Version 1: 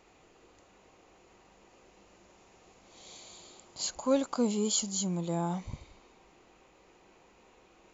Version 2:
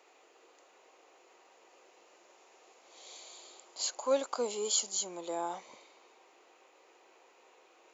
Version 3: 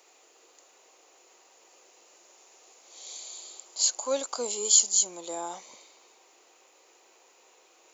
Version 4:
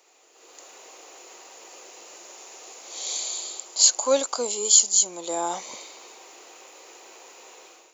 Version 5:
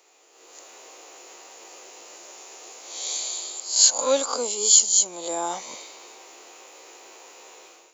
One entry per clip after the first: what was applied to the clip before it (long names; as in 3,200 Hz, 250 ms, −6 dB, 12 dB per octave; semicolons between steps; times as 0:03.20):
high-pass filter 380 Hz 24 dB per octave
bass and treble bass 0 dB, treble +13 dB
automatic gain control gain up to 13.5 dB; level −1 dB
peak hold with a rise ahead of every peak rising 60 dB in 0.43 s; level −1 dB